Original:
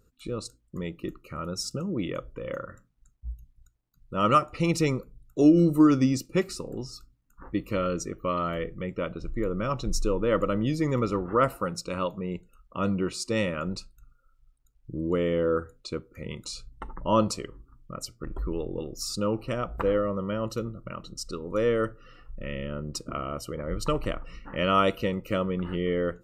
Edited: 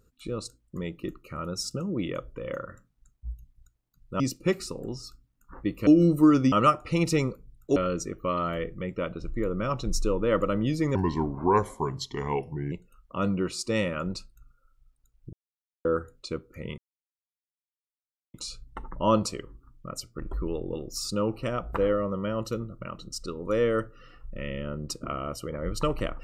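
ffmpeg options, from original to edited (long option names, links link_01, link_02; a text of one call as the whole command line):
ffmpeg -i in.wav -filter_complex "[0:a]asplit=10[link_01][link_02][link_03][link_04][link_05][link_06][link_07][link_08][link_09][link_10];[link_01]atrim=end=4.202[link_11];[link_02]atrim=start=6.088:end=7.762[link_12];[link_03]atrim=start=5.438:end=6.092[link_13];[link_04]atrim=start=4.198:end=5.442[link_14];[link_05]atrim=start=7.758:end=10.954[link_15];[link_06]atrim=start=10.95:end=12.33,asetpts=PTS-STARTPTS,asetrate=34398,aresample=44100,atrim=end_sample=78023,asetpts=PTS-STARTPTS[link_16];[link_07]atrim=start=12.326:end=14.94,asetpts=PTS-STARTPTS,afade=type=out:start_time=2.61:duration=0.004:curve=hsin[link_17];[link_08]atrim=start=14.94:end=15.46,asetpts=PTS-STARTPTS,volume=0[link_18];[link_09]atrim=start=15.46:end=16.39,asetpts=PTS-STARTPTS,afade=type=in:duration=0.004:curve=hsin,afade=type=out:start_time=0.926:duration=0.004:curve=hsin,apad=pad_dur=1.56[link_19];[link_10]atrim=start=16.39,asetpts=PTS-STARTPTS,afade=type=in:duration=0.004:curve=hsin[link_20];[link_11][link_12]acrossfade=duration=0.004:curve1=hsin:curve2=hsin[link_21];[link_21][link_13]acrossfade=duration=0.004:curve1=hsin:curve2=hsin[link_22];[link_22][link_14]acrossfade=duration=0.004:curve1=hsin:curve2=hsin[link_23];[link_23][link_15]acrossfade=duration=0.004:curve1=hsin:curve2=hsin[link_24];[link_24][link_16]acrossfade=duration=0.004:curve1=hsin:curve2=hsin[link_25];[link_17][link_18][link_19][link_20]concat=n=4:v=0:a=1[link_26];[link_25][link_26]acrossfade=duration=0.004:curve1=hsin:curve2=hsin" out.wav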